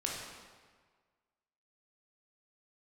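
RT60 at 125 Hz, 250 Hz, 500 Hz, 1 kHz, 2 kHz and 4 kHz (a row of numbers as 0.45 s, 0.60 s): 1.6 s, 1.4 s, 1.6 s, 1.6 s, 1.4 s, 1.2 s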